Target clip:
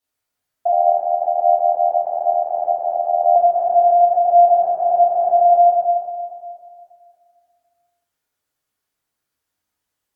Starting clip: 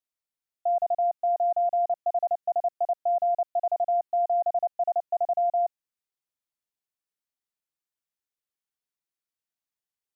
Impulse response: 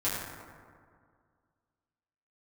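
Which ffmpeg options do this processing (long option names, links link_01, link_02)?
-filter_complex "[1:a]atrim=start_sample=2205,asetrate=40572,aresample=44100[link_01];[0:a][link_01]afir=irnorm=-1:irlink=0,asettb=1/sr,asplit=3[link_02][link_03][link_04];[link_02]atrim=end=0.724[link_05];[link_03]atrim=start=0.72:end=3.36,asetpts=PTS-STARTPTS,afade=type=in:duration=0.004:curve=qsin,afade=type=out:start_time=2.636:duration=0.004:curve=qsin,tremolo=f=80:d=0.947[link_06];[link_04]atrim=start=3.356[link_07];[link_05][link_06]acrossfade=duration=0.004:curve1=hsin:curve2=qsin[link_08];[link_08][link_07]acrossfade=duration=0.004:curve1=qsin:curve2=hsin,volume=6dB"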